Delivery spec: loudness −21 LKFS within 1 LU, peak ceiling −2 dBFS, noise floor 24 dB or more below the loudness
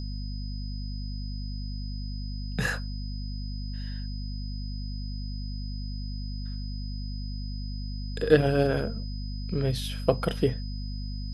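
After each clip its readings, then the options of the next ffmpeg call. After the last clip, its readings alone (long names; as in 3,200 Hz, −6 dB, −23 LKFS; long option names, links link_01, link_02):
mains hum 50 Hz; hum harmonics up to 250 Hz; level of the hum −31 dBFS; interfering tone 5,000 Hz; level of the tone −45 dBFS; integrated loudness −31.5 LKFS; sample peak −6.5 dBFS; target loudness −21.0 LKFS
→ -af "bandreject=frequency=50:width_type=h:width=6,bandreject=frequency=100:width_type=h:width=6,bandreject=frequency=150:width_type=h:width=6,bandreject=frequency=200:width_type=h:width=6,bandreject=frequency=250:width_type=h:width=6"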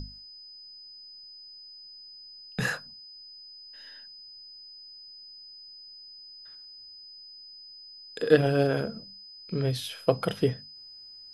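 mains hum none found; interfering tone 5,000 Hz; level of the tone −45 dBFS
→ -af "bandreject=frequency=5000:width=30"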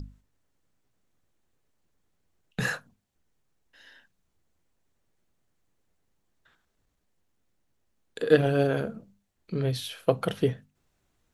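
interfering tone none found; integrated loudness −27.5 LKFS; sample peak −6.0 dBFS; target loudness −21.0 LKFS
→ -af "volume=6.5dB,alimiter=limit=-2dB:level=0:latency=1"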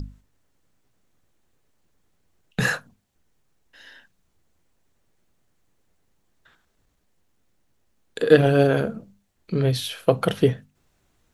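integrated loudness −21.5 LKFS; sample peak −2.0 dBFS; background noise floor −69 dBFS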